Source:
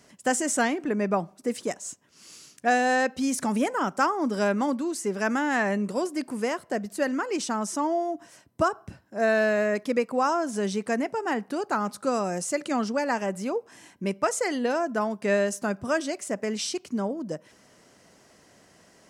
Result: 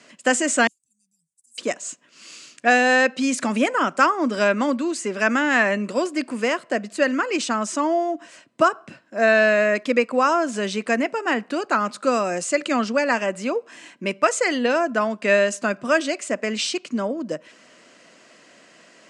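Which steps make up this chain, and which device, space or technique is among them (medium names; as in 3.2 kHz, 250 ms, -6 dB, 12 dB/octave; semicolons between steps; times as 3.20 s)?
0.67–1.58 s: inverse Chebyshev band-stop 310–2100 Hz, stop band 80 dB; television speaker (cabinet simulation 190–7700 Hz, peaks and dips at 190 Hz -7 dB, 280 Hz -3 dB, 410 Hz -7 dB, 830 Hz -9 dB, 2.6 kHz +5 dB, 5.7 kHz -7 dB); trim +8.5 dB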